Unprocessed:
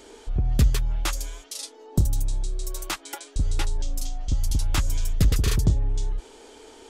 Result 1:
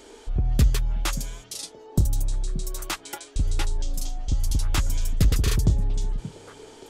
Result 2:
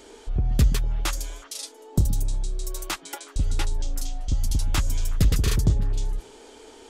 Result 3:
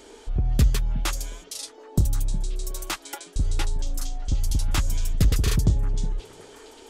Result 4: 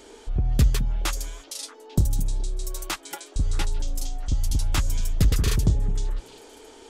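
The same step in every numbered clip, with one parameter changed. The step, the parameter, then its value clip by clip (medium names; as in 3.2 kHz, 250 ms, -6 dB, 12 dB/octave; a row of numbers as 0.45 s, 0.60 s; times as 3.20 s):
repeats whose band climbs or falls, time: 577 ms, 123 ms, 363 ms, 211 ms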